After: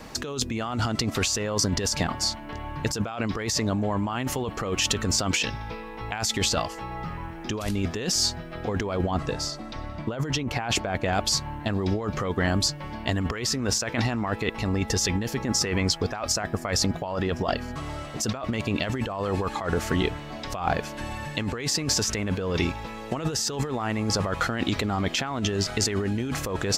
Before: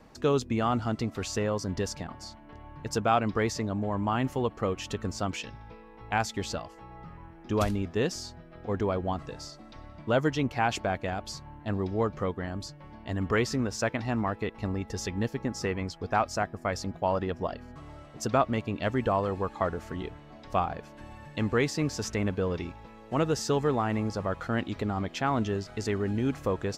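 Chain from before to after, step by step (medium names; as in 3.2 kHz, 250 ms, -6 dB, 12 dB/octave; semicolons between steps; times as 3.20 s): treble shelf 2 kHz +9 dB, from 9.11 s +2 dB, from 11.13 s +8.5 dB; compressor with a negative ratio -33 dBFS, ratio -1; trim +6.5 dB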